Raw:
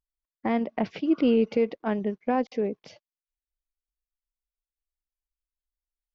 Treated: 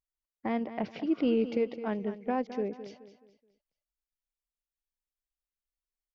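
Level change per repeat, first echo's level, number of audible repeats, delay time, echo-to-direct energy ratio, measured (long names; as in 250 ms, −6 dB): −9.0 dB, −12.5 dB, 3, 213 ms, −12.0 dB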